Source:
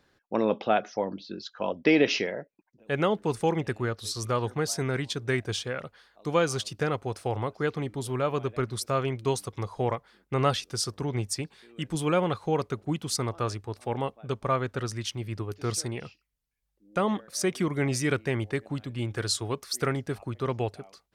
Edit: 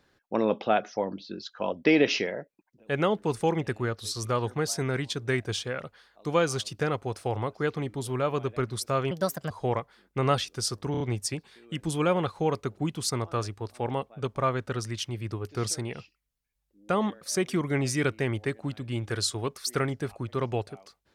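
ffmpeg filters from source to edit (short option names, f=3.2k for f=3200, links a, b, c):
-filter_complex "[0:a]asplit=6[a][b][c][d][e][f];[a]atrim=end=9.114[g];[b]atrim=start=9.11:end=9.66,asetpts=PTS-STARTPTS,asetrate=61740,aresample=44100[h];[c]atrim=start=9.656:end=11.102[i];[d]atrim=start=11.068:end=11.102[j];[e]atrim=start=11.068:end=11.102[k];[f]atrim=start=11.068[l];[g][h]acrossfade=d=0.004:c1=hsin:c2=hsin[m];[m][i]acrossfade=d=0.004:c1=hsin:c2=hsin[n];[n][j]acrossfade=d=0.004:c1=hsin:c2=hsin[o];[o][k]acrossfade=d=0.004:c1=hsin:c2=hsin[p];[p][l]acrossfade=d=0.004:c1=hsin:c2=hsin"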